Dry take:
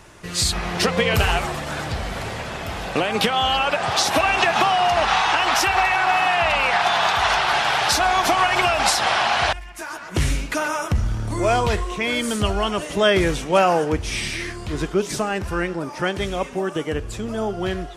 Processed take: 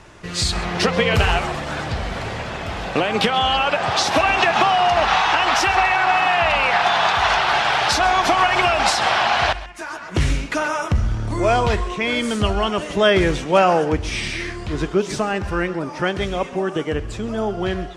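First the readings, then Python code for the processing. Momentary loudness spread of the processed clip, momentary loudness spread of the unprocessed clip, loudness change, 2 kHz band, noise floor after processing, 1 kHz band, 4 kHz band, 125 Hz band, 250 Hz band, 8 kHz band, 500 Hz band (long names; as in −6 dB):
10 LU, 10 LU, +1.5 dB, +1.5 dB, −33 dBFS, +2.0 dB, +0.5 dB, +2.0 dB, +2.0 dB, −2.5 dB, +2.0 dB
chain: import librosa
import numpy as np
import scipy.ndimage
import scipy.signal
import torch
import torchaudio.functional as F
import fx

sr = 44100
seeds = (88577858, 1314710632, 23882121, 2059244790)

y = fx.air_absorb(x, sr, metres=58.0)
y = y + 10.0 ** (-17.5 / 20.0) * np.pad(y, (int(133 * sr / 1000.0), 0))[:len(y)]
y = F.gain(torch.from_numpy(y), 2.0).numpy()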